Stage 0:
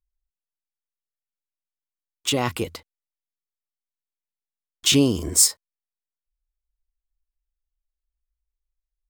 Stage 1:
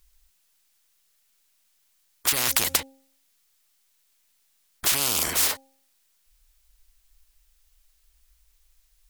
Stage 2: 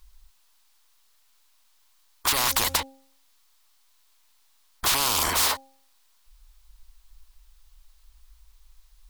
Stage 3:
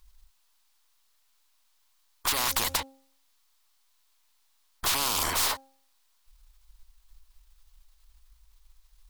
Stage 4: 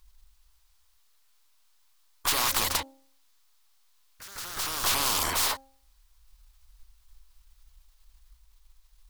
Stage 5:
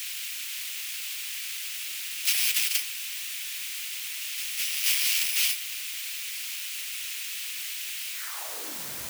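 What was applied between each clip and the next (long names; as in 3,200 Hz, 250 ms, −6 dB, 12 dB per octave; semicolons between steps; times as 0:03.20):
tilt shelving filter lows −5.5 dB, about 1,500 Hz; hum removal 268.3 Hz, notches 3; every bin compressed towards the loudest bin 10 to 1; level −8.5 dB
octave-band graphic EQ 125/1,000/4,000 Hz −7/+11/+5 dB; soft clipping −15.5 dBFS, distortion −12 dB; low-shelf EQ 150 Hz +11 dB
gain on one half-wave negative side −3 dB; level −2.5 dB
delay with pitch and tempo change per echo 260 ms, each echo +2 semitones, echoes 3, each echo −6 dB
samples in bit-reversed order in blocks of 32 samples; bit-depth reduction 6 bits, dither triangular; high-pass filter sweep 2,500 Hz → 68 Hz, 0:08.12–0:09.07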